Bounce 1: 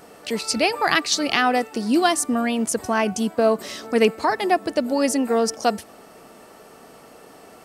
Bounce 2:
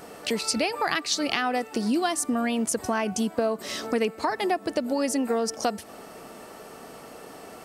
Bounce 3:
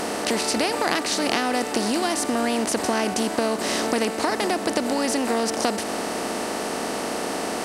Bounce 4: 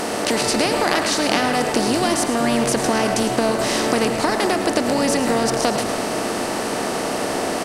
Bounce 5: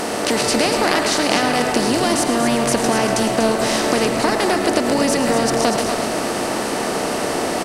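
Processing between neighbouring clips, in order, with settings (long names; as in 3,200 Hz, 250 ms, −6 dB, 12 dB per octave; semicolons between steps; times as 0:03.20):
downward compressor 4 to 1, threshold −26 dBFS, peak gain reduction 12 dB; level +2.5 dB
compressor on every frequency bin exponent 0.4; level −3 dB
echo with shifted repeats 108 ms, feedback 34%, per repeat −97 Hz, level −11.5 dB; convolution reverb RT60 0.85 s, pre-delay 88 ms, DRR 6.5 dB; level +3 dB
single-tap delay 241 ms −7.5 dB; level +1 dB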